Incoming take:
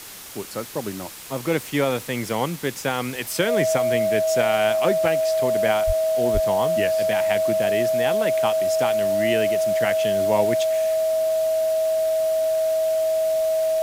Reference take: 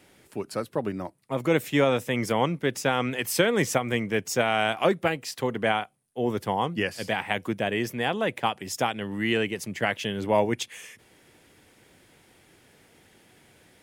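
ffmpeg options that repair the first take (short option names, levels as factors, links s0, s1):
-filter_complex "[0:a]bandreject=f=640:w=30,asplit=3[s0][s1][s2];[s0]afade=t=out:st=5.86:d=0.02[s3];[s1]highpass=f=140:w=0.5412,highpass=f=140:w=1.3066,afade=t=in:st=5.86:d=0.02,afade=t=out:st=5.98:d=0.02[s4];[s2]afade=t=in:st=5.98:d=0.02[s5];[s3][s4][s5]amix=inputs=3:normalize=0,asplit=3[s6][s7][s8];[s6]afade=t=out:st=6.33:d=0.02[s9];[s7]highpass=f=140:w=0.5412,highpass=f=140:w=1.3066,afade=t=in:st=6.33:d=0.02,afade=t=out:st=6.45:d=0.02[s10];[s8]afade=t=in:st=6.45:d=0.02[s11];[s9][s10][s11]amix=inputs=3:normalize=0,afftdn=nr=25:nf=-33"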